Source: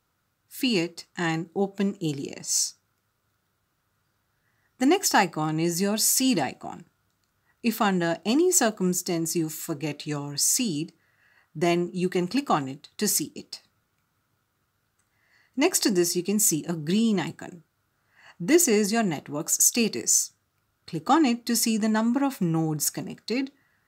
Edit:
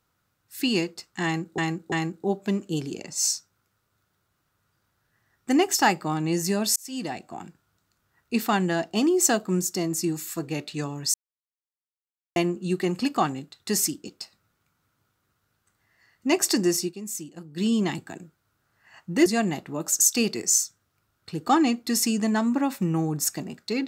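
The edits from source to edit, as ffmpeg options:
ffmpeg -i in.wav -filter_complex "[0:a]asplit=9[link_01][link_02][link_03][link_04][link_05][link_06][link_07][link_08][link_09];[link_01]atrim=end=1.582[link_10];[link_02]atrim=start=1.238:end=1.582[link_11];[link_03]atrim=start=1.238:end=6.08,asetpts=PTS-STARTPTS,afade=type=out:start_time=4.838:duration=0.004:curve=hsin[link_12];[link_04]atrim=start=6.08:end=10.46,asetpts=PTS-STARTPTS,afade=type=in:duration=0.67,afade=type=out:start_time=4.376:duration=0.004:curve=hsin[link_13];[link_05]atrim=start=10.46:end=11.68,asetpts=PTS-STARTPTS,volume=0[link_14];[link_06]atrim=start=11.68:end=16.26,asetpts=PTS-STARTPTS,afade=type=in:duration=0.004:curve=hsin,afade=type=out:start_time=4.42:duration=0.16:curve=qsin:silence=0.251189[link_15];[link_07]atrim=start=16.26:end=16.87,asetpts=PTS-STARTPTS,volume=-12dB[link_16];[link_08]atrim=start=16.87:end=18.582,asetpts=PTS-STARTPTS,afade=type=in:duration=0.16:curve=qsin:silence=0.251189[link_17];[link_09]atrim=start=18.858[link_18];[link_10][link_11]acrossfade=duration=0.004:curve1=hsin:curve2=hsin[link_19];[link_12][link_13][link_14][link_15][link_16][link_17]concat=n=6:v=0:a=1[link_20];[link_19][link_20]acrossfade=duration=0.004:curve1=hsin:curve2=hsin[link_21];[link_21][link_18]acrossfade=duration=0.004:curve1=hsin:curve2=hsin" out.wav

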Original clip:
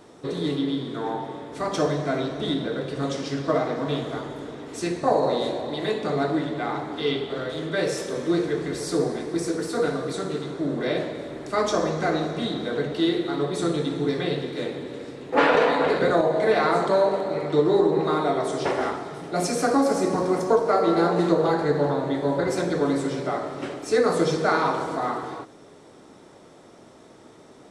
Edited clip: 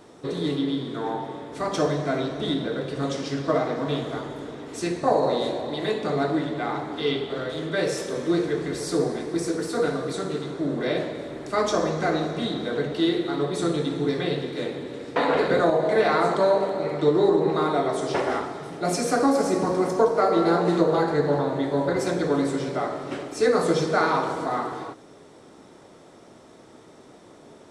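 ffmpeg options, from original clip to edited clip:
ffmpeg -i in.wav -filter_complex "[0:a]asplit=2[link_01][link_02];[link_01]atrim=end=15.162[link_03];[link_02]atrim=start=15.668[link_04];[link_03][link_04]acrossfade=duration=0.004:curve1=hsin:curve2=hsin" out.wav

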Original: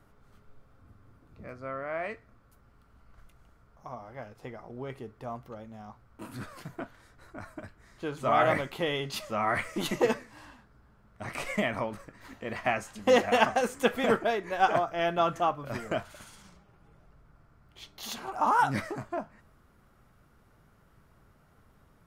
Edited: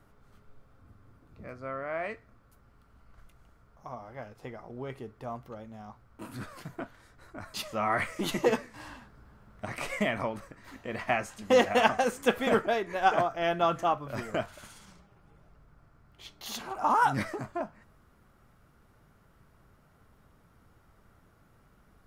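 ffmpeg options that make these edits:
ffmpeg -i in.wav -filter_complex "[0:a]asplit=4[link_01][link_02][link_03][link_04];[link_01]atrim=end=7.542[link_05];[link_02]atrim=start=9.108:end=10.312[link_06];[link_03]atrim=start=10.308:end=11.222,asetpts=PTS-STARTPTS,volume=5dB[link_07];[link_04]atrim=start=11.218[link_08];[link_05][link_06]acrossfade=duration=0.004:curve1=hsin:curve2=hsin[link_09];[link_09][link_07]acrossfade=duration=0.004:curve1=hsin:curve2=hsin[link_10];[link_10][link_08]acrossfade=duration=0.004:curve1=hsin:curve2=hsin" out.wav

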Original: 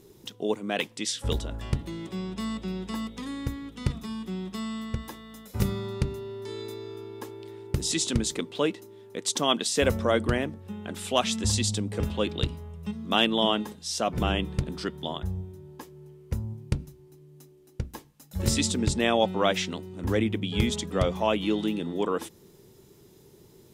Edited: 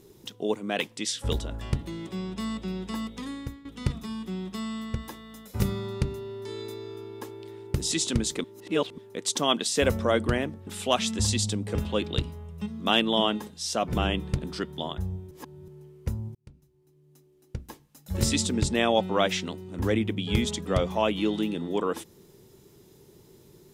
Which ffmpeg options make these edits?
ffmpeg -i in.wav -filter_complex "[0:a]asplit=8[link_01][link_02][link_03][link_04][link_05][link_06][link_07][link_08];[link_01]atrim=end=3.65,asetpts=PTS-STARTPTS,afade=type=out:start_time=3.26:duration=0.39:silence=0.188365[link_09];[link_02]atrim=start=3.65:end=8.442,asetpts=PTS-STARTPTS,afade=type=in:duration=0.004:curve=hsin:silence=0.188365[link_10];[link_03]atrim=start=8.438:end=8.982,asetpts=PTS-STARTPTS,areverse[link_11];[link_04]atrim=start=8.978:end=10.672[link_12];[link_05]atrim=start=10.918:end=15.562[link_13];[link_06]atrim=start=15.558:end=15.932,asetpts=PTS-STARTPTS,areverse[link_14];[link_07]atrim=start=15.928:end=16.6,asetpts=PTS-STARTPTS,afade=type=out:start_time=0.668:duration=0.004:curve=hsin[link_15];[link_08]atrim=start=16.6,asetpts=PTS-STARTPTS,afade=type=in:duration=1.78[link_16];[link_09][link_10]concat=n=2:v=0:a=1[link_17];[link_17][link_11]acrossfade=duration=0.004:curve1=hsin:curve2=hsin[link_18];[link_18][link_12]acrossfade=duration=0.004:curve1=hsin:curve2=hsin[link_19];[link_19][link_13]acrossfade=duration=0.004:curve1=hsin:curve2=hsin[link_20];[link_20][link_14]acrossfade=duration=0.004:curve1=hsin:curve2=hsin[link_21];[link_15][link_16]concat=n=2:v=0:a=1[link_22];[link_21][link_22]acrossfade=duration=0.004:curve1=hsin:curve2=hsin" out.wav

